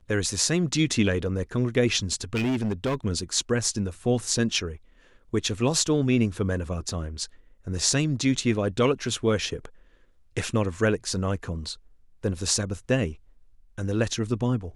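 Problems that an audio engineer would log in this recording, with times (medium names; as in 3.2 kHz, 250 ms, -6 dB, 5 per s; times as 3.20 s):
2.34–2.95 s: clipped -22 dBFS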